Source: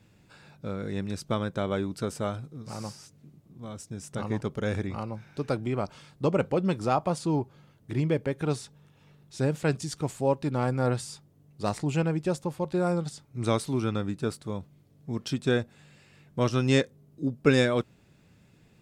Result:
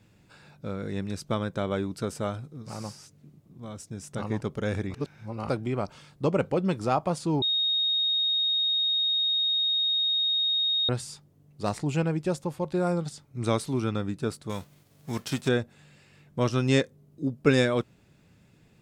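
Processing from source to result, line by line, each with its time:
4.94–5.49 reverse
7.42–10.89 bleep 3730 Hz -22.5 dBFS
14.49–15.47 spectral whitening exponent 0.6

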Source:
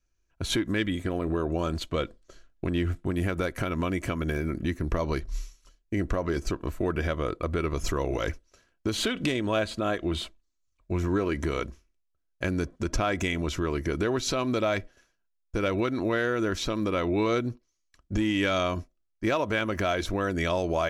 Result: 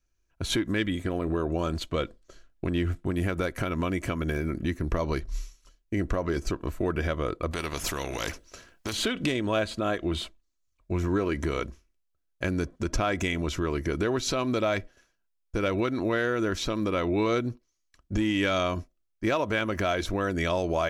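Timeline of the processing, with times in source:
7.51–8.93 spectral compressor 2:1

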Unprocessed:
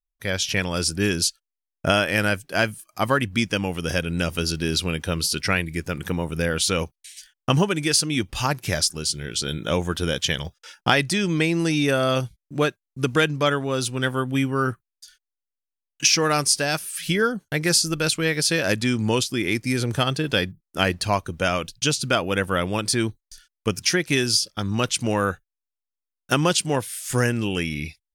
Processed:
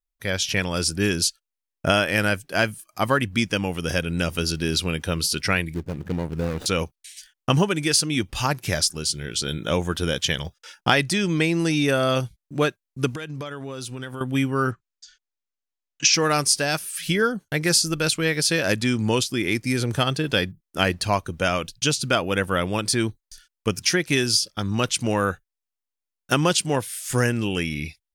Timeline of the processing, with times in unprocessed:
5.74–6.66 median filter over 41 samples
13.1–14.21 compressor 16:1, threshold -28 dBFS
14.71–16.14 steep low-pass 7700 Hz 72 dB/oct

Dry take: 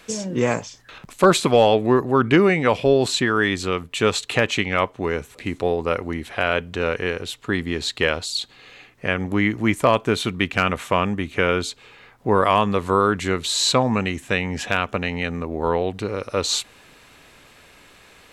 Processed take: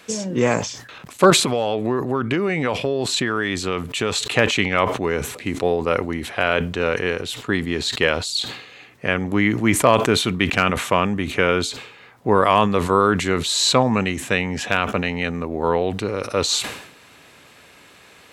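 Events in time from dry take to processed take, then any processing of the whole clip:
1.3–4.19 compressor 10:1, threshold -18 dBFS
whole clip: HPF 85 Hz; sustainer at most 76 dB/s; gain +1.5 dB

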